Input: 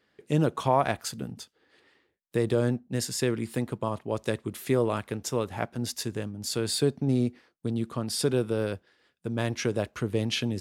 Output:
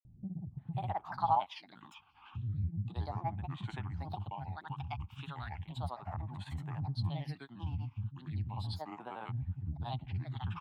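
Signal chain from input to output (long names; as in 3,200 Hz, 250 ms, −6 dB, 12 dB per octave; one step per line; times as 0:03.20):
granular cloud, pitch spread up and down by 7 semitones
drawn EQ curve 110 Hz 0 dB, 500 Hz −26 dB, 820 Hz +8 dB, 1,300 Hz −6 dB, 4,100 Hz −3 dB, 6,000 Hz −27 dB, 11,000 Hz −25 dB
multiband delay without the direct sound lows, highs 530 ms, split 260 Hz
upward compression, threshold −34 dBFS
all-pass phaser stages 8, 0.35 Hz, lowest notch 530–4,800 Hz
level −2.5 dB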